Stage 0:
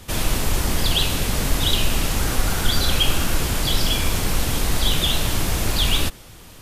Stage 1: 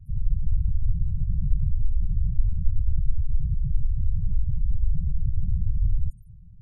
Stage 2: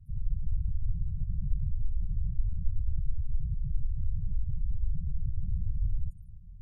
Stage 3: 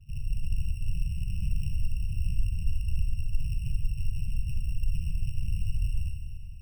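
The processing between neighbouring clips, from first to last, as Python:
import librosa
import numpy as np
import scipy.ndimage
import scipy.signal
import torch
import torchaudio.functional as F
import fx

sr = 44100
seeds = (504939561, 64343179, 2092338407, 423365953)

y1 = scipy.signal.sosfilt(scipy.signal.cheby2(4, 50, [410.0, 2800.0], 'bandstop', fs=sr, output='sos'), x)
y1 = fx.spec_gate(y1, sr, threshold_db=-15, keep='strong')
y2 = y1 + 10.0 ** (-19.0 / 20.0) * np.pad(y1, (int(669 * sr / 1000.0), 0))[:len(y1)]
y2 = F.gain(torch.from_numpy(y2), -7.0).numpy()
y3 = np.r_[np.sort(y2[:len(y2) // 16 * 16].reshape(-1, 16), axis=1).ravel(), y2[len(y2) // 16 * 16:]]
y3 = fx.rev_schroeder(y3, sr, rt60_s=2.1, comb_ms=30, drr_db=2.0)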